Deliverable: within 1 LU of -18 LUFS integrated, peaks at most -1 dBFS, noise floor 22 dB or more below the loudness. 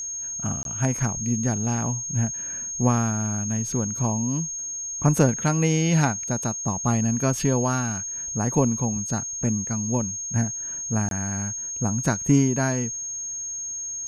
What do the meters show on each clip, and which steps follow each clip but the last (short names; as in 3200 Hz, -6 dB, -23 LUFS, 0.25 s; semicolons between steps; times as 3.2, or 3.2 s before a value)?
dropouts 2; longest dropout 22 ms; steady tone 6500 Hz; tone level -29 dBFS; loudness -24.0 LUFS; peak -4.0 dBFS; loudness target -18.0 LUFS
-> interpolate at 0.63/11.09, 22 ms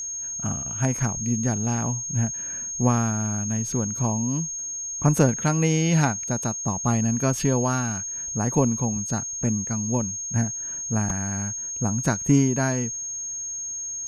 dropouts 0; steady tone 6500 Hz; tone level -29 dBFS
-> notch 6500 Hz, Q 30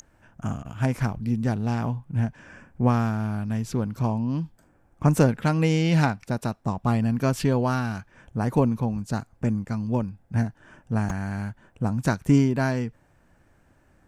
steady tone none; loudness -25.5 LUFS; peak -4.5 dBFS; loudness target -18.0 LUFS
-> gain +7.5 dB; limiter -1 dBFS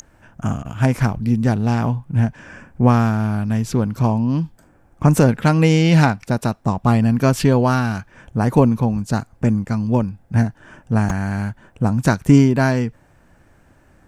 loudness -18.5 LUFS; peak -1.0 dBFS; noise floor -54 dBFS